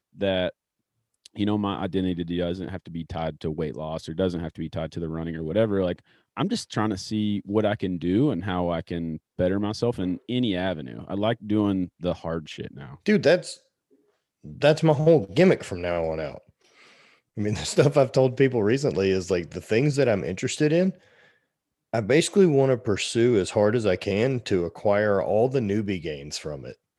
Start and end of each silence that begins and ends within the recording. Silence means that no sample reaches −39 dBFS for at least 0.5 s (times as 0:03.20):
0:00.50–0:01.26
0:13.55–0:14.45
0:16.38–0:17.37
0:20.95–0:21.94